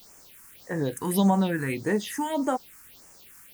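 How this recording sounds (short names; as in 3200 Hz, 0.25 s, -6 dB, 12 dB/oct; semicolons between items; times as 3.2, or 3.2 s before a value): a quantiser's noise floor 8-bit, dither triangular; phasing stages 4, 1.7 Hz, lowest notch 570–3800 Hz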